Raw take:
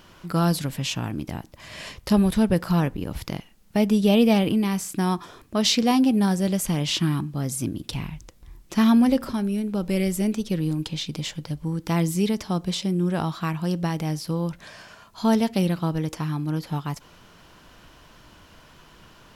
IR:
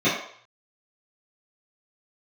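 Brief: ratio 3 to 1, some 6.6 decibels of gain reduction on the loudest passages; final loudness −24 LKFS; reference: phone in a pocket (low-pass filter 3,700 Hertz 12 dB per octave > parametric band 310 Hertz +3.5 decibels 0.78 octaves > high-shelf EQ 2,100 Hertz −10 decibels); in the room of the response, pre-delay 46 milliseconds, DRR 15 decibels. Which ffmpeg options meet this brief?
-filter_complex "[0:a]acompressor=threshold=-23dB:ratio=3,asplit=2[link_01][link_02];[1:a]atrim=start_sample=2205,adelay=46[link_03];[link_02][link_03]afir=irnorm=-1:irlink=0,volume=-33dB[link_04];[link_01][link_04]amix=inputs=2:normalize=0,lowpass=3700,equalizer=frequency=310:width_type=o:width=0.78:gain=3.5,highshelf=frequency=2100:gain=-10,volume=3.5dB"

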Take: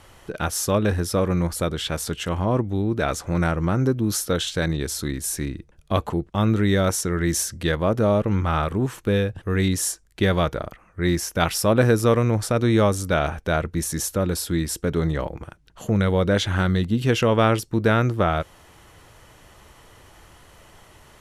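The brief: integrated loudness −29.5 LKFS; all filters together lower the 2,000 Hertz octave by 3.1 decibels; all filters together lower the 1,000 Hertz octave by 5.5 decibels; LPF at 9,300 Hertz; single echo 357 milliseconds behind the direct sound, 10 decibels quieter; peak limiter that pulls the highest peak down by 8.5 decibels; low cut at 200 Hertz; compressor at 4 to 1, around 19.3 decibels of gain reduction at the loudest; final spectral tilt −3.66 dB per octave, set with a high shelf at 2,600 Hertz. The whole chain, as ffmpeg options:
ffmpeg -i in.wav -af "highpass=200,lowpass=9300,equalizer=frequency=1000:width_type=o:gain=-8,equalizer=frequency=2000:width_type=o:gain=-3.5,highshelf=frequency=2600:gain=6,acompressor=threshold=-40dB:ratio=4,alimiter=level_in=7.5dB:limit=-24dB:level=0:latency=1,volume=-7.5dB,aecho=1:1:357:0.316,volume=13.5dB" out.wav

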